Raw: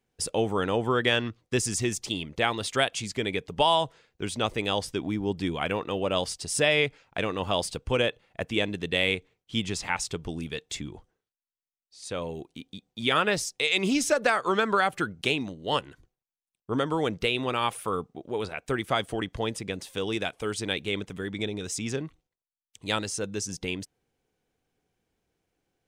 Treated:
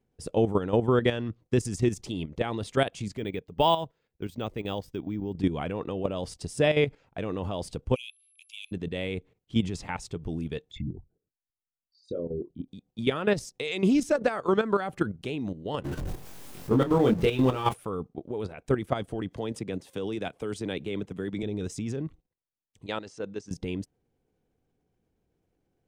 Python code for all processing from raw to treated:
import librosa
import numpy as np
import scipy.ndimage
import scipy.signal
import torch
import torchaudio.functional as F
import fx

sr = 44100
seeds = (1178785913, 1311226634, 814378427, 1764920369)

y = fx.chain(x, sr, fx.peak_eq(hz=3300.0, db=2.5, octaves=2.1),
    fx.resample_bad(factor=2, down='none', up='hold'),
    fx.upward_expand(threshold_db=-38.0, expansion=1.5), at=(3.17, 5.34))
y = fx.steep_highpass(y, sr, hz=2400.0, slope=96, at=(7.94, 8.71), fade=0.02)
y = fx.dmg_tone(y, sr, hz=11000.0, level_db=-51.0, at=(7.94, 8.71), fade=0.02)
y = fx.chain(y, sr, fx.envelope_sharpen(power=3.0),
    fx.air_absorb(metres=160.0),
    fx.doubler(ms=23.0, db=-4.5), at=(10.71, 12.68))
y = fx.chain(y, sr, fx.zero_step(step_db=-32.5),
    fx.doubler(ms=23.0, db=-2.0), at=(15.84, 17.74))
y = fx.chain(y, sr, fx.highpass(hz=150.0, slope=6),
    fx.band_squash(depth_pct=40), at=(19.31, 21.43))
y = fx.chain(y, sr, fx.highpass(hz=590.0, slope=6),
    fx.air_absorb(metres=100.0), at=(22.86, 23.51))
y = fx.tilt_shelf(y, sr, db=7.0, hz=810.0)
y = fx.level_steps(y, sr, step_db=11)
y = F.gain(torch.from_numpy(y), 1.5).numpy()